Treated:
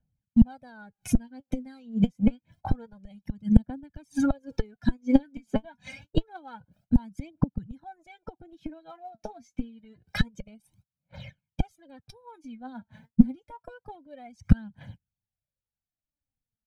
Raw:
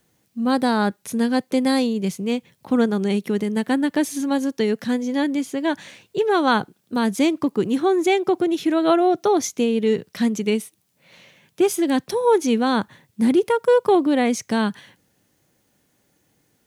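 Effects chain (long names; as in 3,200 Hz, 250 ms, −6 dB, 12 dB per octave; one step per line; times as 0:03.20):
noise gate −49 dBFS, range −34 dB
reverb reduction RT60 1.6 s
gate with flip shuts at −19 dBFS, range −34 dB
RIAA equalisation playback
comb filter 1.3 ms, depth 89%
phase shifter 0.27 Hz, delay 4.7 ms, feedback 68%
level +3.5 dB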